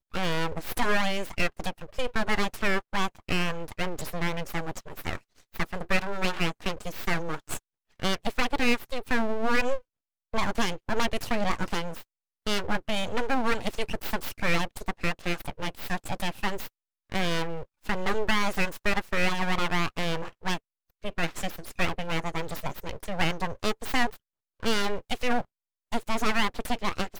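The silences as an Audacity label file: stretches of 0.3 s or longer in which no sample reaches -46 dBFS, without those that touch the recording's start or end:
7.590000	8.000000	silence
9.810000	10.340000	silence
12.030000	12.470000	silence
16.680000	17.100000	silence
20.580000	21.030000	silence
24.170000	24.600000	silence
25.450000	25.920000	silence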